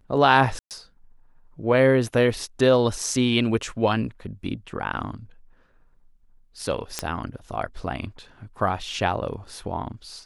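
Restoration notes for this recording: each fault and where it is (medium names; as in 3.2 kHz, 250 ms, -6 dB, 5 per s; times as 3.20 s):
0.59–0.71 s: dropout 118 ms
6.99 s: pop -9 dBFS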